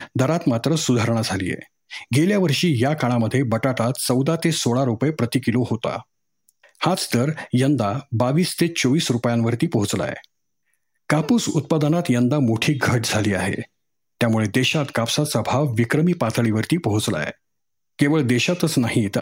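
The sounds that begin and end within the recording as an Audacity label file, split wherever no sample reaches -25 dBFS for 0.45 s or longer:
6.820000	10.170000	sound
11.100000	13.620000	sound
14.210000	17.300000	sound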